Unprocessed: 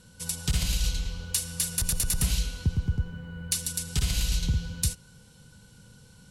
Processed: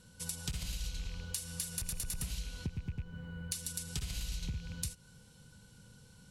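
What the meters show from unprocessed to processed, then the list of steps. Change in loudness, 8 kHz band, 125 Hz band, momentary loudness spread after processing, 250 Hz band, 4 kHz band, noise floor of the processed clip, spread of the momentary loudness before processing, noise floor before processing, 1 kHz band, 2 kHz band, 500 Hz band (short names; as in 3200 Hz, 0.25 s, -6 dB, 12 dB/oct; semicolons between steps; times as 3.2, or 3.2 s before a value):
-11.0 dB, -10.5 dB, -11.5 dB, 20 LU, -9.5 dB, -11.0 dB, -60 dBFS, 6 LU, -54 dBFS, -10.0 dB, -9.5 dB, -9.0 dB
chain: rattling part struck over -30 dBFS, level -33 dBFS; compressor, threshold -30 dBFS, peak gain reduction 10.5 dB; gain -5 dB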